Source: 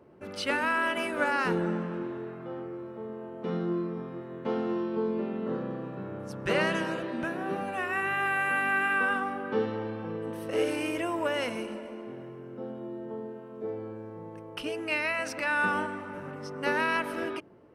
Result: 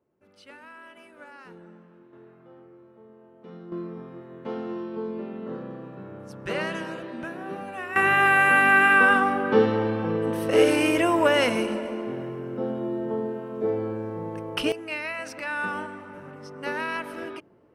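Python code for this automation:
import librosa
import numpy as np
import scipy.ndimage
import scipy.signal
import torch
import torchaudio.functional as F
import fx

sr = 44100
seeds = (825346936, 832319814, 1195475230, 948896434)

y = fx.gain(x, sr, db=fx.steps((0.0, -19.0), (2.13, -12.0), (3.72, -2.5), (7.96, 9.5), (14.72, -2.5)))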